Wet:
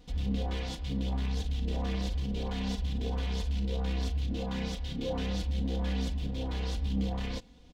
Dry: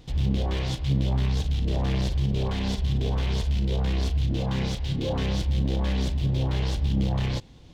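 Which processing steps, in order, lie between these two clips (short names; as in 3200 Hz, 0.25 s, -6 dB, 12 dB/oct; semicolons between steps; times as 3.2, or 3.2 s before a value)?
comb 4.1 ms, depth 82%; gain -8 dB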